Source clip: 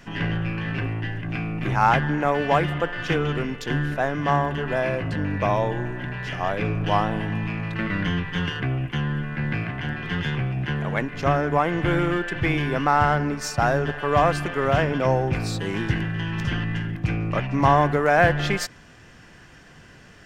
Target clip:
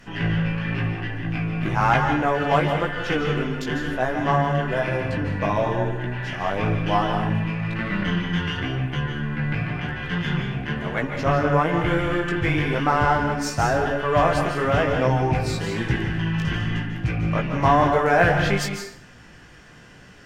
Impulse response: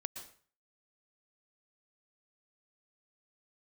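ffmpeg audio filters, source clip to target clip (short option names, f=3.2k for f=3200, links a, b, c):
-filter_complex "[0:a]flanger=delay=15.5:depth=4.7:speed=1[a];[1:a]atrim=start_sample=2205,asetrate=35280,aresample=44100[b];[a][b]afir=irnorm=-1:irlink=0,volume=4.5dB"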